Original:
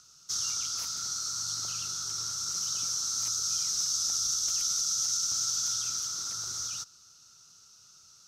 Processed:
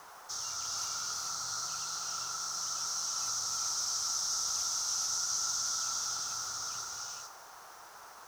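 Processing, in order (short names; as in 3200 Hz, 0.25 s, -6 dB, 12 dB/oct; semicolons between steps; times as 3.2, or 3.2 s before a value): 1.53–3.26 low shelf 220 Hz -6 dB; non-linear reverb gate 0.47 s rising, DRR -1 dB; band noise 370–1800 Hz -52 dBFS; band shelf 1000 Hz +9 dB 1.2 oct; thinning echo 0.203 s, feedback 53%, level -19 dB; bit-crush 8-bit; gain -7.5 dB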